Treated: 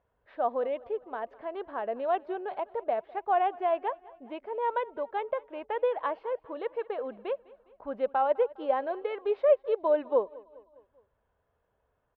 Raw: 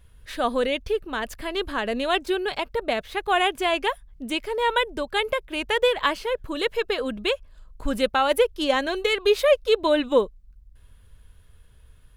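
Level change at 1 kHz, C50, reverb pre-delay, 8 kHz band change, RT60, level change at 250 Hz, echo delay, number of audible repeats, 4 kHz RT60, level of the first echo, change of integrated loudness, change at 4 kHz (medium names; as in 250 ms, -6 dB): -4.0 dB, no reverb, no reverb, under -35 dB, no reverb, -13.0 dB, 204 ms, 3, no reverb, -22.0 dB, -6.5 dB, -26.0 dB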